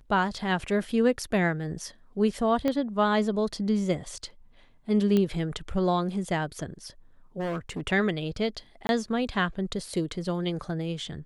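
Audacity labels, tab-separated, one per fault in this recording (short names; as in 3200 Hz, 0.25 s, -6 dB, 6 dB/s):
2.680000	2.680000	pop -15 dBFS
5.170000	5.170000	pop -14 dBFS
7.390000	7.810000	clipped -28 dBFS
8.870000	8.890000	gap 21 ms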